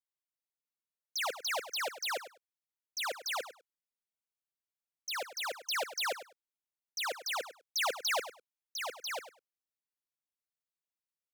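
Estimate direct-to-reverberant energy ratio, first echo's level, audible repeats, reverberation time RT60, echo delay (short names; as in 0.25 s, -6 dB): none, -13.0 dB, 2, none, 0.101 s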